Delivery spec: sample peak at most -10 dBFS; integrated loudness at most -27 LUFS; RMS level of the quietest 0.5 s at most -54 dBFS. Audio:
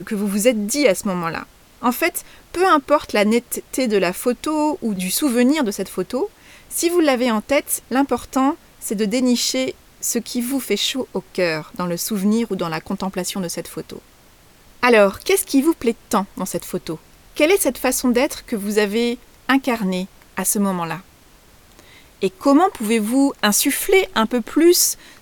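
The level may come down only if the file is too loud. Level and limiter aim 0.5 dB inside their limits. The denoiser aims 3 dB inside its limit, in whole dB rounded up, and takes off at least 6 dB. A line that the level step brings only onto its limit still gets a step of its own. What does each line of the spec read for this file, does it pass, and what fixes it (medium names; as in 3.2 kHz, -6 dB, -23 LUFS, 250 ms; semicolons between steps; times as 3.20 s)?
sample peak -2.5 dBFS: fail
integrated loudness -19.5 LUFS: fail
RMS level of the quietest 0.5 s -50 dBFS: fail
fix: trim -8 dB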